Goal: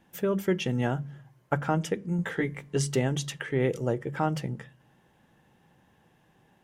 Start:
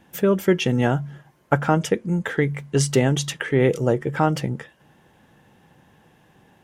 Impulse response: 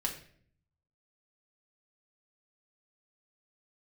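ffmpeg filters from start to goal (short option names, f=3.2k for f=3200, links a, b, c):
-filter_complex "[0:a]bandreject=f=50:t=h:w=6,bandreject=f=100:t=h:w=6,bandreject=f=150:t=h:w=6,bandreject=f=200:t=h:w=6,asettb=1/sr,asplit=3[a][b][c];[a]atrim=end=2.174[d];[b]atrim=start=2.17:end=2.77,asetpts=PTS-STARTPTS,afade=t=in:d=0.004:c=qsin,afade=t=out:st=0.596:d=0.004:c=qsin,asplit=2[e][f];[f]adelay=17,volume=-2.5dB[g];[e][g]amix=inputs=2:normalize=0,atrim=end_sample=26460[h];[c]atrim=start=2.766[i];[d][h]acrossfade=d=0.004:c1=hsin:c2=qsin[j];[j][i]acrossfade=d=0.004:c1=qsin:c2=hsin,asplit=2[k][l];[1:a]atrim=start_sample=2205,lowshelf=f=390:g=10.5[m];[l][m]afir=irnorm=-1:irlink=0,volume=-23.5dB[n];[k][n]amix=inputs=2:normalize=0,volume=-8.5dB"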